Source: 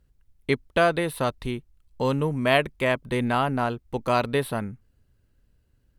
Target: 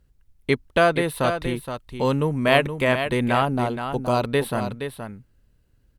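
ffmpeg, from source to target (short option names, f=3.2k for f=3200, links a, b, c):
-filter_complex "[0:a]asettb=1/sr,asplit=3[a][b][c];[a]atrim=end=3.454[d];[b]atrim=start=3.45:end=4.23,asetpts=PTS-STARTPTS,afade=t=in:d=0.004:c=qsin,afade=t=out:st=0.776:d=0.004:c=qsin,equalizer=f=1.9k:w=1.3:g=-12[e];[c]atrim=start=4.226[f];[d][e]acrossfade=d=0.004:c1=hsin:c2=qsin[g];[g][f]acrossfade=d=0.004:c1=qsin:c2=hsin,aecho=1:1:471:0.376,volume=2.5dB"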